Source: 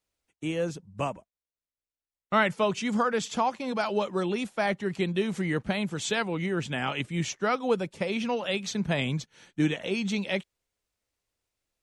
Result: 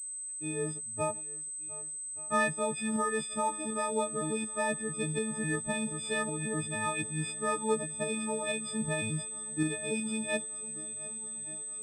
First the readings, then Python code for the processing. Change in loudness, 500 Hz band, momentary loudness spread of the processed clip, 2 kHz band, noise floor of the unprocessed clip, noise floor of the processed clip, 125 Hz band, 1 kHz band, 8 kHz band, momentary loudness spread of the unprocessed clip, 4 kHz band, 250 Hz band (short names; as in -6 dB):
-3.5 dB, -5.0 dB, 6 LU, -3.5 dB, under -85 dBFS, -40 dBFS, -5.5 dB, -4.0 dB, +10.5 dB, 7 LU, -7.0 dB, -5.5 dB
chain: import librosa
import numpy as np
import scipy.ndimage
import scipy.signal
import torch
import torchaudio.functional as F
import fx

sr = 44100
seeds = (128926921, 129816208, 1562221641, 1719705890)

y = fx.freq_snap(x, sr, grid_st=6)
y = fx.high_shelf(y, sr, hz=2100.0, db=-11.0)
y = fx.tremolo_shape(y, sr, shape='saw_up', hz=2.7, depth_pct=35)
y = fx.echo_swing(y, sr, ms=1177, ratio=1.5, feedback_pct=65, wet_db=-20)
y = fx.pwm(y, sr, carrier_hz=8200.0)
y = F.gain(torch.from_numpy(y), -3.5).numpy()